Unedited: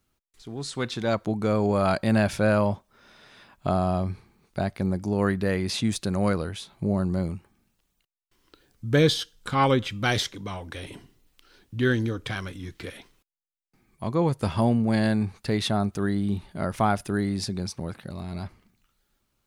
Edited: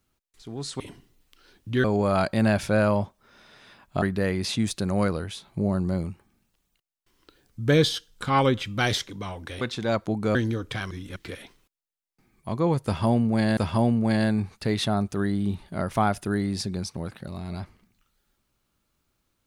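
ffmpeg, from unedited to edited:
-filter_complex "[0:a]asplit=9[a][b][c][d][e][f][g][h][i];[a]atrim=end=0.802[j];[b]atrim=start=10.858:end=11.902[k];[c]atrim=start=1.538:end=3.722[l];[d]atrim=start=5.268:end=10.862[m];[e]atrim=start=0.798:end=1.542[n];[f]atrim=start=11.898:end=12.462[o];[g]atrim=start=12.458:end=12.712,asetpts=PTS-STARTPTS,areverse[p];[h]atrim=start=12.708:end=15.122[q];[i]atrim=start=14.398[r];[j][k]acrossfade=d=0.004:c1=hsin:c2=hsin[s];[s][l]acrossfade=d=0.004:c1=hsin:c2=hsin[t];[t][m]acrossfade=d=0.004:c1=hsin:c2=hsin[u];[u][n]acrossfade=d=0.004:c1=hsin:c2=hsin[v];[v][o]acrossfade=d=0.004:c1=hsin:c2=hsin[w];[w][p]acrossfade=d=0.004:c1=hsin:c2=hsin[x];[x][q]acrossfade=d=0.004:c1=hsin:c2=hsin[y];[y][r]acrossfade=d=0.004:c1=hsin:c2=hsin"

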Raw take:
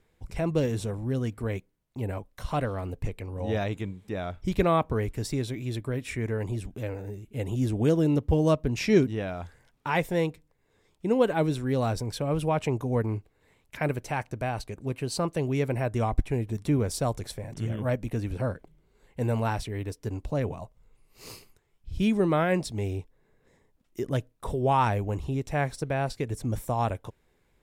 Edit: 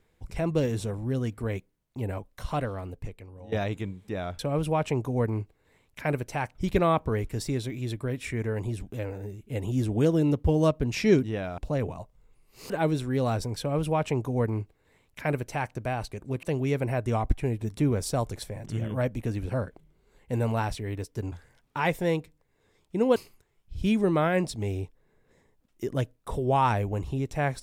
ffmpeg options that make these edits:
-filter_complex "[0:a]asplit=9[a][b][c][d][e][f][g][h][i];[a]atrim=end=3.52,asetpts=PTS-STARTPTS,afade=t=out:st=2.43:d=1.09:silence=0.149624[j];[b]atrim=start=3.52:end=4.392,asetpts=PTS-STARTPTS,afade=t=in:d=0.004:c=hsin:silence=0.149624[k];[c]atrim=start=12.148:end=14.312[l];[d]atrim=start=4.388:end=9.422[m];[e]atrim=start=20.198:end=21.322[n];[f]atrim=start=11.258:end=14.992[o];[g]atrim=start=15.308:end=20.202[p];[h]atrim=start=9.418:end=11.262[q];[i]atrim=start=21.318[r];[j][k]concat=n=2:v=0:a=1[s];[s][l]acrossfade=d=0.004:c1=hsin:c2=hsin[t];[t][m]acrossfade=d=0.004:c1=hsin:c2=hsin[u];[u][n]acrossfade=d=0.004:c1=hsin:c2=hsin[v];[v][o]acrossfade=d=0.004:c1=hsin:c2=hsin[w];[w][p]acrossfade=d=0.004:c1=hsin:c2=hsin[x];[x][q]acrossfade=d=0.004:c1=hsin:c2=hsin[y];[y][r]acrossfade=d=0.004:c1=hsin:c2=hsin"

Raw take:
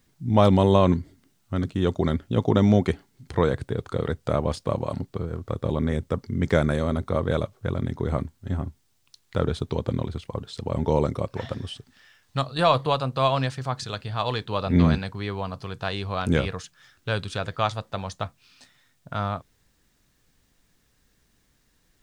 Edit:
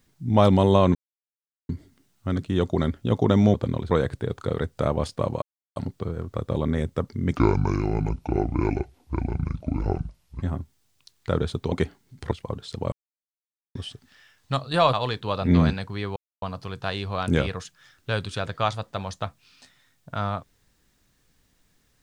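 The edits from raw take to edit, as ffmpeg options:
-filter_complex "[0:a]asplit=13[a][b][c][d][e][f][g][h][i][j][k][l][m];[a]atrim=end=0.95,asetpts=PTS-STARTPTS,afade=t=out:st=0.946:d=0.004:c=hsin,apad=pad_dur=0.74[n];[b]atrim=start=0.95:end=2.802,asetpts=PTS-STARTPTS,afade=t=in:d=0.004:c=hsin[o];[c]atrim=start=9.788:end=10.162[p];[d]atrim=start=3.388:end=4.9,asetpts=PTS-STARTPTS,afade=t=out:st=1.508:d=0.004:c=hsin,apad=pad_dur=0.34[q];[e]atrim=start=4.9:end=6.504,asetpts=PTS-STARTPTS,afade=t=in:d=0.004:c=hsin[r];[f]atrim=start=6.5:end=8.49,asetpts=PTS-STARTPTS,asetrate=28665,aresample=44100[s];[g]atrim=start=8.486:end=9.792[t];[h]atrim=start=2.798:end=3.392[u];[i]atrim=start=10.158:end=10.77,asetpts=PTS-STARTPTS,afade=t=out:st=0.608:d=0.004:c=hsin[v];[j]atrim=start=10.77:end=11.6,asetpts=PTS-STARTPTS,volume=0[w];[k]atrim=start=11.6:end=12.782,asetpts=PTS-STARTPTS,afade=t=in:d=0.004:c=hsin[x];[l]atrim=start=14.178:end=15.41,asetpts=PTS-STARTPTS,afade=t=out:st=1.228:d=0.004:c=hsin,apad=pad_dur=0.26[y];[m]atrim=start=15.41,asetpts=PTS-STARTPTS,afade=t=in:d=0.004:c=hsin[z];[n][o]concat=n=2:v=0:a=1[aa];[aa][p]acrossfade=d=0.004:c1=hsin:c2=hsin[ab];[q][r]concat=n=2:v=0:a=1[ac];[ab][ac]acrossfade=d=0.004:c1=hsin:c2=hsin[ad];[ad][s]acrossfade=d=0.004:c1=hsin:c2=hsin[ae];[ae][t]acrossfade=d=0.004:c1=hsin:c2=hsin[af];[af][u]acrossfade=d=0.004:c1=hsin:c2=hsin[ag];[v][w][x]concat=n=3:v=0:a=1[ah];[ag][ah]acrossfade=d=0.004:c1=hsin:c2=hsin[ai];[y][z]concat=n=2:v=0:a=1[aj];[ai][aj]acrossfade=d=0.004:c1=hsin:c2=hsin"

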